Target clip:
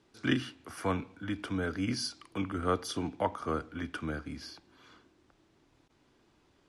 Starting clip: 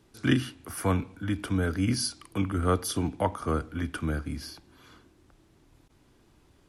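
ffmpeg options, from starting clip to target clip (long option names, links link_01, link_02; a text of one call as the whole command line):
ffmpeg -i in.wav -af "lowpass=6500,lowshelf=frequency=140:gain=-11.5,volume=-2.5dB" out.wav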